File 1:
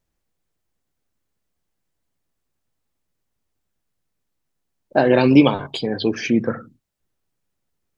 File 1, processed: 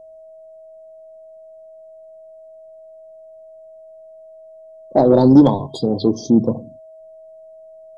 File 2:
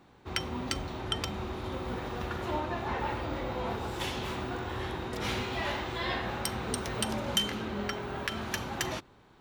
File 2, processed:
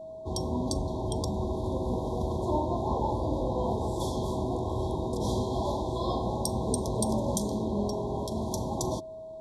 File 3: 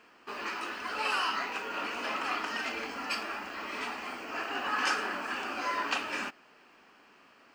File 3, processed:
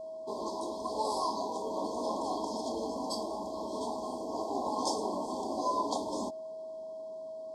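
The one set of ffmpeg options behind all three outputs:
ffmpeg -i in.wav -af "adynamicequalizer=threshold=0.0141:dfrequency=450:dqfactor=2.4:tfrequency=450:tqfactor=2.4:attack=5:release=100:ratio=0.375:range=2:mode=cutabove:tftype=bell,aeval=exprs='val(0)+0.00631*sin(2*PI*640*n/s)':channel_layout=same,afftfilt=real='re*(1-between(b*sr/4096,1100,3200))':imag='im*(1-between(b*sr/4096,1100,3200))':win_size=4096:overlap=0.75,acontrast=63,lowpass=frequency=11000:width=0.5412,lowpass=frequency=11000:width=1.3066,equalizer=frequency=2700:width=0.74:gain=-14" out.wav

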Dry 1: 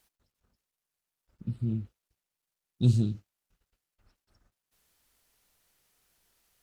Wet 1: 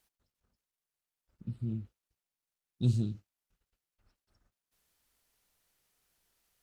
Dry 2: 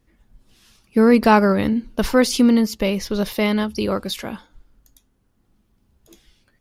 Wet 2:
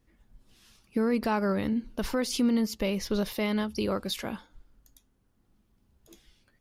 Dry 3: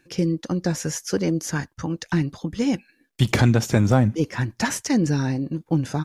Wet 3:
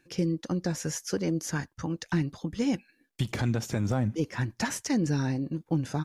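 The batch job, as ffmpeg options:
ffmpeg -i in.wav -af "alimiter=limit=-12.5dB:level=0:latency=1:release=245,volume=-5dB" out.wav

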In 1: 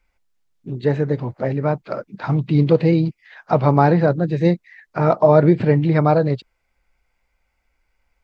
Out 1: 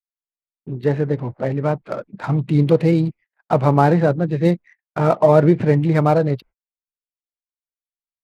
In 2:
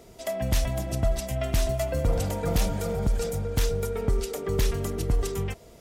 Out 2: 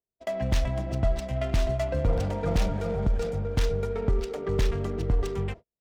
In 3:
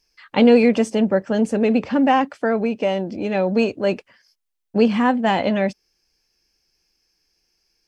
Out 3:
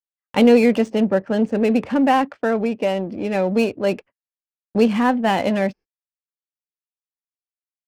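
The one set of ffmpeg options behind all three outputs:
ffmpeg -i in.wav -af "agate=range=-47dB:threshold=-38dB:ratio=16:detection=peak,adynamicsmooth=sensitivity=6.5:basefreq=1700" out.wav

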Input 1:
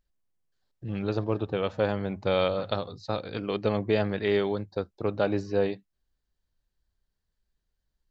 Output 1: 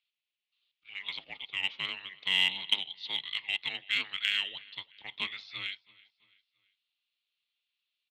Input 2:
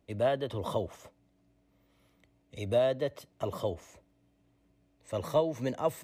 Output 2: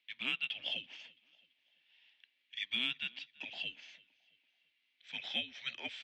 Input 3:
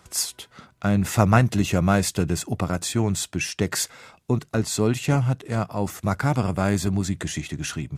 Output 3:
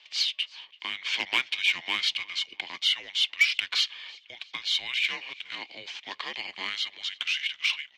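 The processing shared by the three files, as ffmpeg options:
ffmpeg -i in.wav -filter_complex "[0:a]aecho=1:1:334|668|1002:0.0631|0.0278|0.0122,acrossover=split=380|470|1800[link_01][link_02][link_03][link_04];[link_03]asoftclip=type=hard:threshold=-18dB[link_05];[link_01][link_02][link_05][link_04]amix=inputs=4:normalize=0,highpass=frequency=500:width_type=q:width=0.5412,highpass=frequency=500:width_type=q:width=1.307,lowpass=frequency=3500:width_type=q:width=0.5176,lowpass=frequency=3500:width_type=q:width=0.7071,lowpass=frequency=3500:width_type=q:width=1.932,afreqshift=-380,aexciter=amount=4.7:drive=7.9:freq=2100,aderivative,volume=6.5dB" out.wav

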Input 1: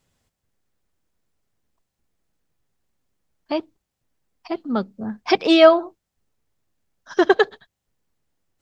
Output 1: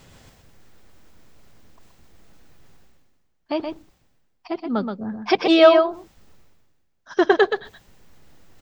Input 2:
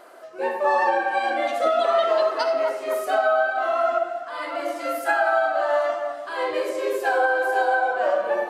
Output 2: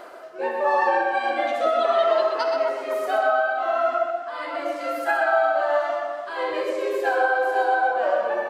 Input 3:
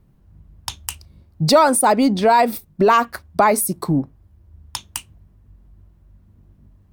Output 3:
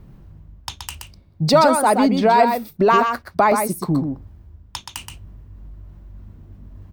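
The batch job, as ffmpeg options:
ffmpeg -i in.wav -af "equalizer=frequency=11000:width=0.77:gain=-8,areverse,acompressor=mode=upward:threshold=-30dB:ratio=2.5,areverse,aecho=1:1:125:0.501,volume=-1dB" out.wav

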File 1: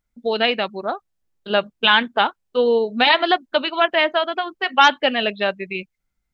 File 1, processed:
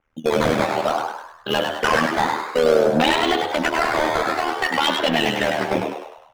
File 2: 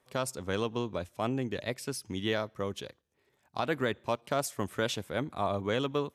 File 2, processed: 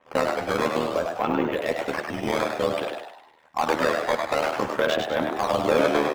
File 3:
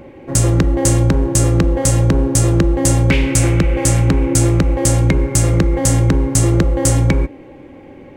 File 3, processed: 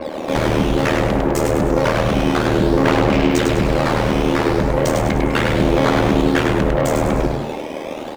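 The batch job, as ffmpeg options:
ffmpeg -i in.wav -filter_complex "[0:a]highshelf=frequency=6400:gain=-6.5,bandreject=frequency=56.03:width_type=h:width=4,bandreject=frequency=112.06:width_type=h:width=4,bandreject=frequency=168.09:width_type=h:width=4,bandreject=frequency=224.12:width_type=h:width=4,bandreject=frequency=280.15:width_type=h:width=4,bandreject=frequency=336.18:width_type=h:width=4,bandreject=frequency=392.21:width_type=h:width=4,bandreject=frequency=448.24:width_type=h:width=4,bandreject=frequency=504.27:width_type=h:width=4,bandreject=frequency=560.3:width_type=h:width=4,bandreject=frequency=616.33:width_type=h:width=4,bandreject=frequency=672.36:width_type=h:width=4,bandreject=frequency=728.39:width_type=h:width=4,bandreject=frequency=784.42:width_type=h:width=4,bandreject=frequency=840.45:width_type=h:width=4,bandreject=frequency=896.48:width_type=h:width=4,bandreject=frequency=952.51:width_type=h:width=4,bandreject=frequency=1008.54:width_type=h:width=4,bandreject=frequency=1064.57:width_type=h:width=4,bandreject=frequency=1120.6:width_type=h:width=4,bandreject=frequency=1176.63:width_type=h:width=4,bandreject=frequency=1232.66:width_type=h:width=4,bandreject=frequency=1288.69:width_type=h:width=4,bandreject=frequency=1344.72:width_type=h:width=4,bandreject=frequency=1400.75:width_type=h:width=4,bandreject=frequency=1456.78:width_type=h:width=4,bandreject=frequency=1512.81:width_type=h:width=4,bandreject=frequency=1568.84:width_type=h:width=4,bandreject=frequency=1624.87:width_type=h:width=4,bandreject=frequency=1680.9:width_type=h:width=4,bandreject=frequency=1736.93:width_type=h:width=4,bandreject=frequency=1792.96:width_type=h:width=4,bandreject=frequency=1848.99:width_type=h:width=4,bandreject=frequency=1905.02:width_type=h:width=4,bandreject=frequency=1961.05:width_type=h:width=4,bandreject=frequency=2017.08:width_type=h:width=4,acrossover=split=380|3000[link_01][link_02][link_03];[link_02]acompressor=threshold=-28dB:ratio=6[link_04];[link_01][link_04][link_03]amix=inputs=3:normalize=0,aecho=1:1:3.8:0.46,acrusher=samples=9:mix=1:aa=0.000001:lfo=1:lforange=14.4:lforate=0.55,asplit=2[link_05][link_06];[link_06]highpass=frequency=720:poles=1,volume=18dB,asoftclip=type=tanh:threshold=-1.5dB[link_07];[link_05][link_07]amix=inputs=2:normalize=0,lowpass=frequency=1500:poles=1,volume=-6dB,asoftclip=type=tanh:threshold=-18dB,tremolo=f=77:d=0.889,aphaser=in_gain=1:out_gain=1:delay=2.4:decay=0.22:speed=0.34:type=sinusoidal,asplit=2[link_08][link_09];[link_09]asplit=6[link_10][link_11][link_12][link_13][link_14][link_15];[link_10]adelay=101,afreqshift=88,volume=-4.5dB[link_16];[link_11]adelay=202,afreqshift=176,volume=-11.2dB[link_17];[link_12]adelay=303,afreqshift=264,volume=-18dB[link_18];[link_13]adelay=404,afreqshift=352,volume=-24.7dB[link_19];[link_14]adelay=505,afreqshift=440,volume=-31.5dB[link_20];[link_15]adelay=606,afreqshift=528,volume=-38.2dB[link_21];[link_16][link_17][link_18][link_19][link_20][link_21]amix=inputs=6:normalize=0[link_22];[link_08][link_22]amix=inputs=2:normalize=0,adynamicequalizer=threshold=0.00794:dfrequency=5000:dqfactor=0.7:tfrequency=5000:tqfactor=0.7:attack=5:release=100:ratio=0.375:range=1.5:mode=cutabove:tftype=highshelf,volume=6dB" out.wav

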